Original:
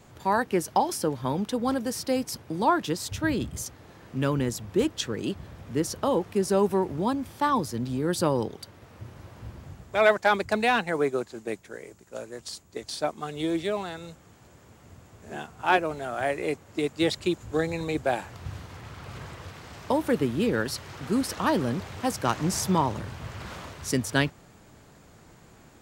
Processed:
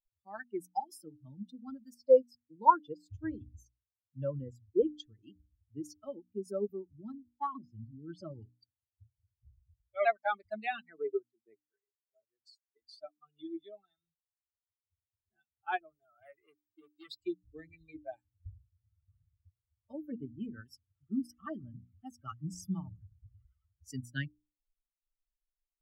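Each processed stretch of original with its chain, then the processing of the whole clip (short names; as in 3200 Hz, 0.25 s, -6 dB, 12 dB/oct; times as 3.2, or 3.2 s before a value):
1.94–5.06 HPF 52 Hz + high shelf 6100 Hz -8 dB + small resonant body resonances 510/960 Hz, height 15 dB, ringing for 55 ms
7.24–10.12 LPF 5200 Hz + shaped vibrato saw down 3.2 Hz, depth 160 cents
11.01–12.38 high shelf 12000 Hz -9.5 dB + small resonant body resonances 400/670 Hz, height 7 dB, ringing for 0.1 s
15.89–17.23 HPF 56 Hz + high shelf 12000 Hz +12 dB + core saturation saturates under 1600 Hz
20.05–23.56 Butterworth band-stop 4200 Hz, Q 3.9 + high shelf 9000 Hz -4 dB
whole clip: per-bin expansion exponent 3; high shelf 2800 Hz -10.5 dB; notches 60/120/180/240/300 Hz; gain -4 dB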